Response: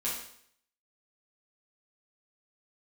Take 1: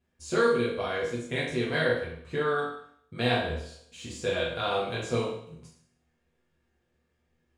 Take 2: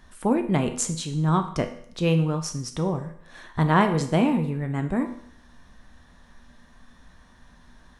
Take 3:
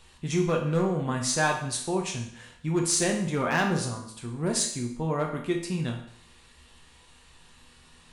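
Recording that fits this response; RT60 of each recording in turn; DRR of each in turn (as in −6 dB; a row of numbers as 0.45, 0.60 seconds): 1; 0.65, 0.65, 0.65 seconds; −8.0, 6.0, 0.5 decibels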